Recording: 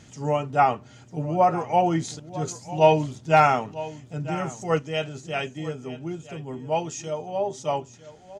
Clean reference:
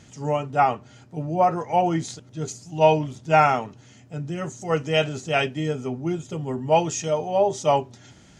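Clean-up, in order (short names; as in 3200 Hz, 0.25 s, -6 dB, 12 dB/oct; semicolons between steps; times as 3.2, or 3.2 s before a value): clip repair -7.5 dBFS; inverse comb 0.95 s -16 dB; gain 0 dB, from 4.79 s +6.5 dB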